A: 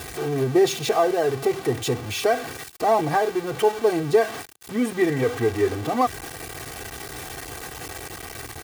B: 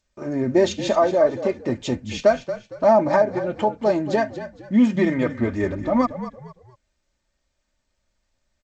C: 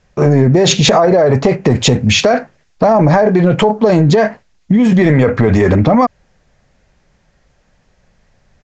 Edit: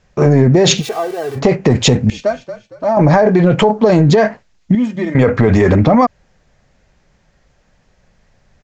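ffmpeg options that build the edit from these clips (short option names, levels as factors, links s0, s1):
-filter_complex "[1:a]asplit=2[s0][s1];[2:a]asplit=4[s2][s3][s4][s5];[s2]atrim=end=0.83[s6];[0:a]atrim=start=0.77:end=1.41[s7];[s3]atrim=start=1.35:end=2.102[s8];[s0]atrim=start=2.098:end=2.972[s9];[s4]atrim=start=2.968:end=4.752[s10];[s1]atrim=start=4.748:end=5.152[s11];[s5]atrim=start=5.148[s12];[s6][s7]acrossfade=d=0.06:c1=tri:c2=tri[s13];[s13][s8]acrossfade=d=0.06:c1=tri:c2=tri[s14];[s14][s9]acrossfade=d=0.004:c1=hsin:c2=hsin[s15];[s15][s10]acrossfade=d=0.004:c1=hsin:c2=hsin[s16];[s16][s11]acrossfade=d=0.004:c1=hsin:c2=hsin[s17];[s17][s12]acrossfade=d=0.004:c1=hsin:c2=hsin"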